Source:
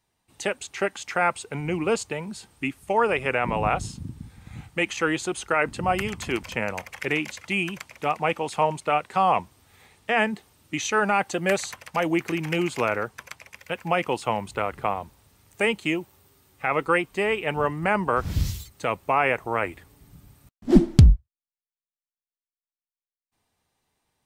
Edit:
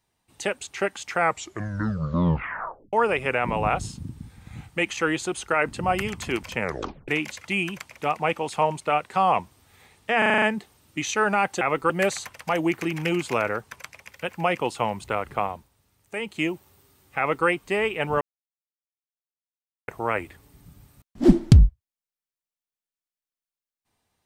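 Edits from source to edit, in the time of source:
0:01.16: tape stop 1.77 s
0:06.61: tape stop 0.47 s
0:10.18: stutter 0.04 s, 7 plays
0:14.94–0:15.91: duck −8.5 dB, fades 0.23 s
0:16.65–0:16.94: duplicate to 0:11.37
0:17.68–0:19.35: silence

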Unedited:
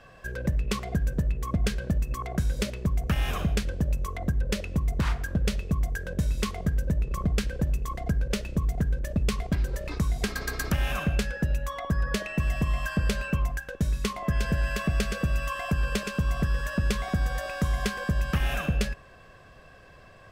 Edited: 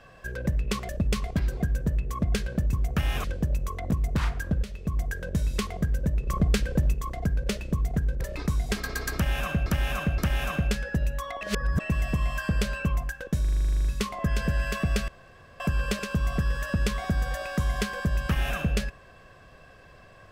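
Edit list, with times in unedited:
0:02.05–0:02.86: remove
0:03.37–0:03.62: remove
0:04.29–0:04.75: remove
0:05.47–0:05.87: fade in, from −13.5 dB
0:07.13–0:07.78: clip gain +3 dB
0:09.05–0:09.73: move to 0:00.89
0:10.66–0:11.18: repeat, 3 plays
0:11.89–0:12.28: reverse
0:13.89: stutter 0.04 s, 12 plays
0:15.12–0:15.64: fill with room tone

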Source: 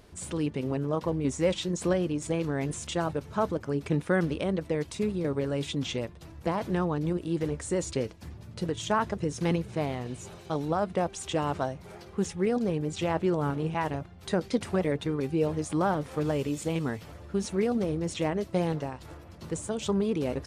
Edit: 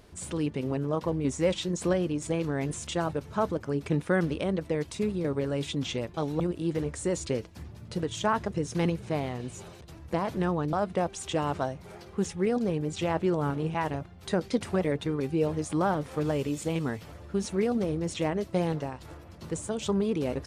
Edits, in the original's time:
0:06.14–0:07.06: swap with 0:10.47–0:10.73

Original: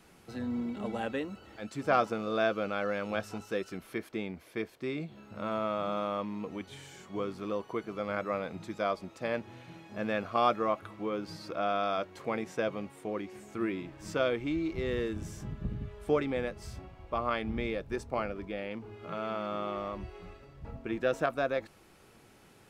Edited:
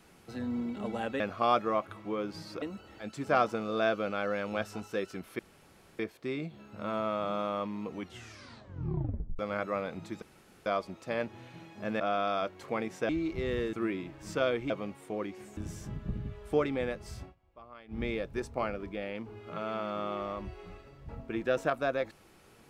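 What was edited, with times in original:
0:03.97–0:04.57: fill with room tone
0:06.58: tape stop 1.39 s
0:08.80: splice in room tone 0.44 s
0:10.14–0:11.56: move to 0:01.20
0:12.65–0:13.52: swap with 0:14.49–0:15.13
0:16.79–0:17.56: duck −19.5 dB, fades 0.12 s

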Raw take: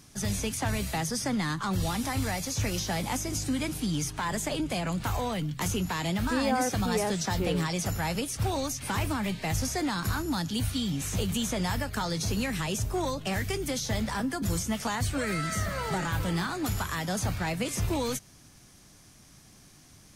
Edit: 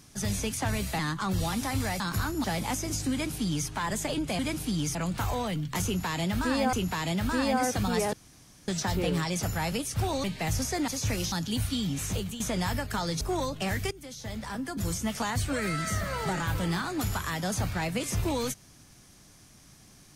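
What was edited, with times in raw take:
0:00.99–0:01.41: remove
0:02.42–0:02.86: swap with 0:09.91–0:10.35
0:03.54–0:04.10: duplicate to 0:04.81
0:05.71–0:06.59: repeat, 2 plays
0:07.11: splice in room tone 0.55 s
0:08.67–0:09.27: remove
0:11.11–0:11.43: fade out, to −12.5 dB
0:12.24–0:12.86: remove
0:13.56–0:14.79: fade in, from −17.5 dB

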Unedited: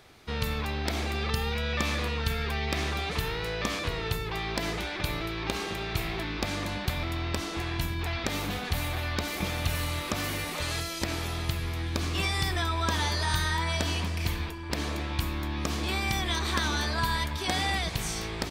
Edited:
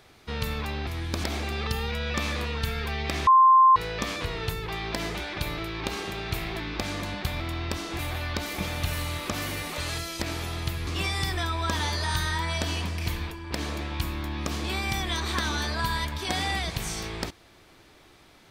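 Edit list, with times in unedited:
0:02.90–0:03.39: beep over 1,050 Hz −12.5 dBFS
0:07.62–0:08.81: remove
0:11.69–0:12.06: move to 0:00.87

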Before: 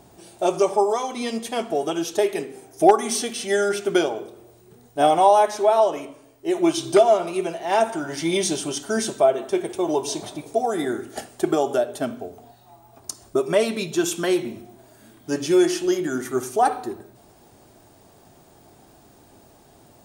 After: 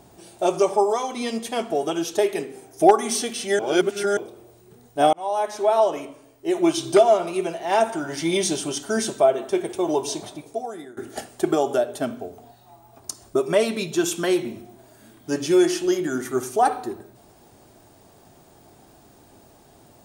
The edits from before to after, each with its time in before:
0:03.59–0:04.17: reverse
0:05.13–0:06.04: fade in equal-power
0:10.03–0:10.97: fade out, to −23.5 dB

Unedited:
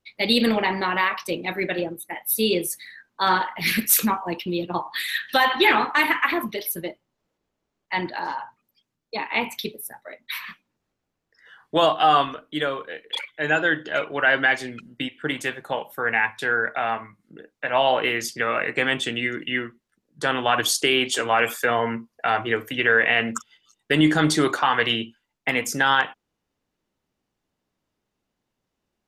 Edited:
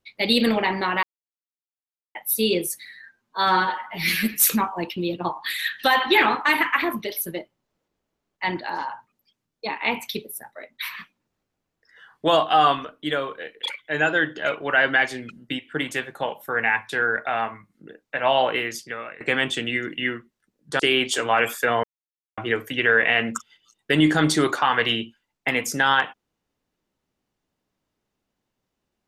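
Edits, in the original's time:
0:01.03–0:02.15: silence
0:02.86–0:03.87: time-stretch 1.5×
0:17.90–0:18.70: fade out, to −21.5 dB
0:20.29–0:20.80: remove
0:21.84–0:22.38: silence

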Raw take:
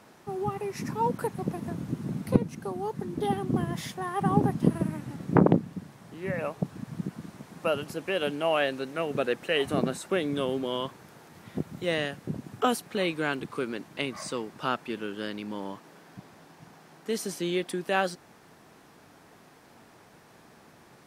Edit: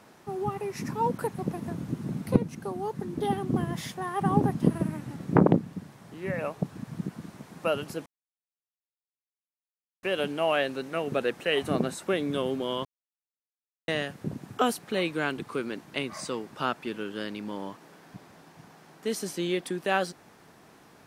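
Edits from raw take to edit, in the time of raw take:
0:08.06: splice in silence 1.97 s
0:10.88–0:11.91: silence

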